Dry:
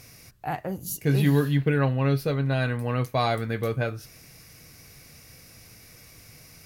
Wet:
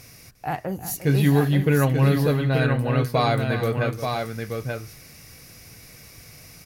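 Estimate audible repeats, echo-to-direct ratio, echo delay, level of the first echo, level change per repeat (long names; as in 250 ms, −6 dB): 2, −4.5 dB, 352 ms, −13.0 dB, repeats not evenly spaced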